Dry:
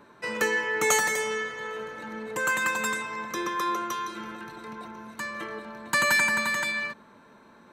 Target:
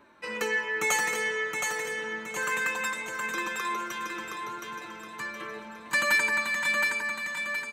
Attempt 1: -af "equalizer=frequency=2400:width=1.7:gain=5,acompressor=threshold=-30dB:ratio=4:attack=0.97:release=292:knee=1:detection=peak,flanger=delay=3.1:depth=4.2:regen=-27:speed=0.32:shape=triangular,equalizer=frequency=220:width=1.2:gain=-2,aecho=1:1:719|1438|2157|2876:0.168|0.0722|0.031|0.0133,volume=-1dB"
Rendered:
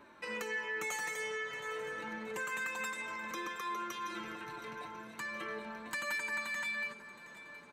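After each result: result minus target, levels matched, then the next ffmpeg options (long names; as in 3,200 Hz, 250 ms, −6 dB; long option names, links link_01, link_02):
downward compressor: peak gain reduction +14 dB; echo-to-direct −11 dB
-af "equalizer=frequency=2400:width=1.7:gain=5,flanger=delay=3.1:depth=4.2:regen=-27:speed=0.32:shape=triangular,equalizer=frequency=220:width=1.2:gain=-2,aecho=1:1:719|1438|2157|2876:0.168|0.0722|0.031|0.0133,volume=-1dB"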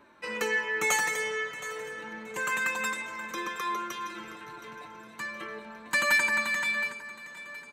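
echo-to-direct −11 dB
-af "equalizer=frequency=2400:width=1.7:gain=5,flanger=delay=3.1:depth=4.2:regen=-27:speed=0.32:shape=triangular,equalizer=frequency=220:width=1.2:gain=-2,aecho=1:1:719|1438|2157|2876|3595:0.596|0.256|0.11|0.0474|0.0204,volume=-1dB"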